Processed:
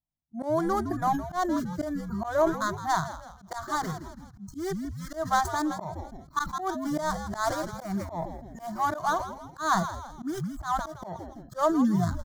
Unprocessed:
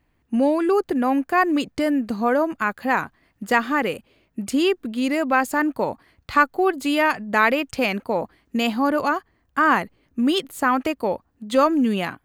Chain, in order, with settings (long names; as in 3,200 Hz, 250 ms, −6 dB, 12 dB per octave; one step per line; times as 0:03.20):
running median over 25 samples
graphic EQ with 15 bands 160 Hz +7 dB, 630 Hz +10 dB, 6,300 Hz +6 dB
noise reduction from a noise print of the clip's start 28 dB
echo with shifted repeats 163 ms, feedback 45%, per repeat −110 Hz, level −12.5 dB
dynamic equaliser 740 Hz, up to −3 dB, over −30 dBFS, Q 1.6
volume swells 153 ms
phaser with its sweep stopped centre 1,100 Hz, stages 4
level that may fall only so fast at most 110 dB per second